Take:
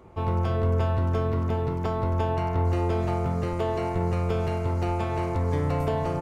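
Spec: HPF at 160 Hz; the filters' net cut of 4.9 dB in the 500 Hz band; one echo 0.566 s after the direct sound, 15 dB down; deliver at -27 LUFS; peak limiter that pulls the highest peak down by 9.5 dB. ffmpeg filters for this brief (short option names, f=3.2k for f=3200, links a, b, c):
-af "highpass=160,equalizer=f=500:t=o:g=-6.5,alimiter=level_in=2.5dB:limit=-24dB:level=0:latency=1,volume=-2.5dB,aecho=1:1:566:0.178,volume=8.5dB"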